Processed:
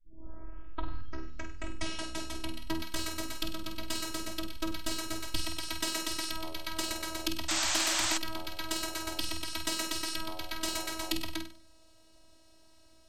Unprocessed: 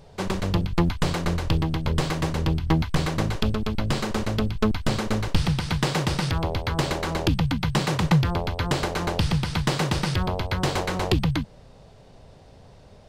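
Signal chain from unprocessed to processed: tape start-up on the opening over 2.78 s; pre-emphasis filter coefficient 0.8; hard clipper -16.5 dBFS, distortion -48 dB; robot voice 321 Hz; flutter echo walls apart 8.4 m, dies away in 0.42 s; painted sound noise, 7.48–8.18 s, 560–8400 Hz -34 dBFS; trim +3 dB

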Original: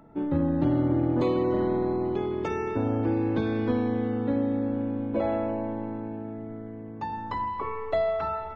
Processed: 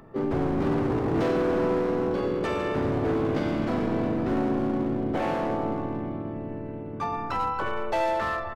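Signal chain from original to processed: overload inside the chain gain 26 dB; harmony voices -12 st -11 dB, -4 st -6 dB, +5 st -1 dB

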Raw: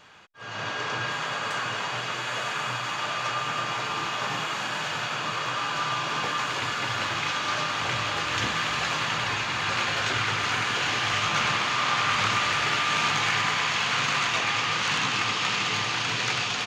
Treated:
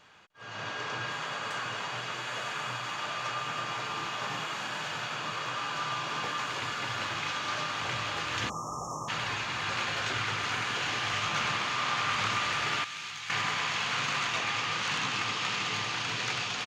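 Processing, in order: 12.84–13.30 s: amplifier tone stack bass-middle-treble 5-5-5; delay 301 ms -21 dB; 8.49–9.08 s: spectral selection erased 1.3–5.3 kHz; trim -5.5 dB

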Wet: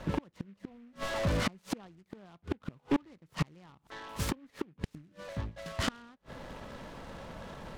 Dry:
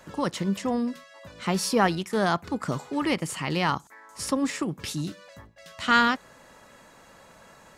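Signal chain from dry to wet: 0.71–1.50 s: jump at every zero crossing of -35 dBFS; low-pass 6.2 kHz 12 dB/octave; tilt EQ -2.5 dB/octave; 4.83–5.25 s: transient shaper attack +11 dB, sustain -1 dB; inverted gate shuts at -18 dBFS, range -38 dB; hard clipper -27.5 dBFS, distortion -9 dB; delay time shaken by noise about 1.7 kHz, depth 0.054 ms; trim +5 dB

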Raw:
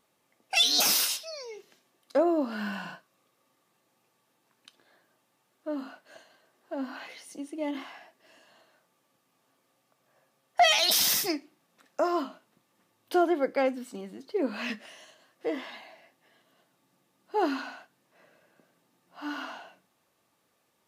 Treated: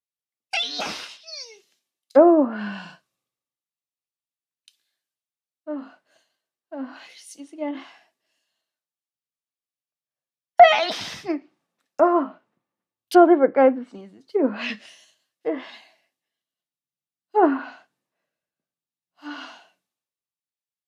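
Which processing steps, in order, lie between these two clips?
low-pass that closes with the level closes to 1.6 kHz, closed at -25.5 dBFS; three bands expanded up and down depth 100%; trim +2.5 dB

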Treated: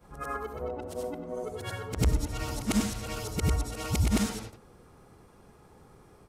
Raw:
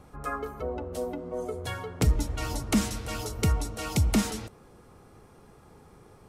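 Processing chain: short-time spectra conjugated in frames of 198 ms; trim +1.5 dB

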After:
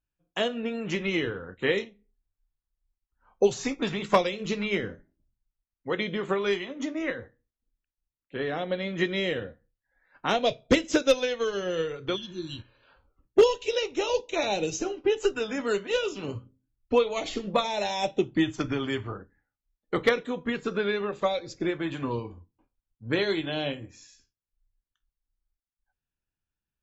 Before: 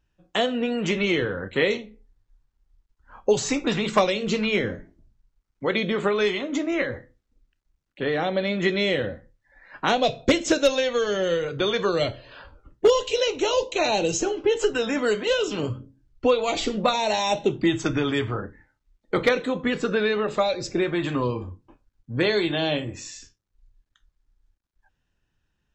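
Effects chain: speed mistake 25 fps video run at 24 fps; spectral replace 12.19–12.77 s, 370–2700 Hz after; upward expansion 1.5:1, over -45 dBFS

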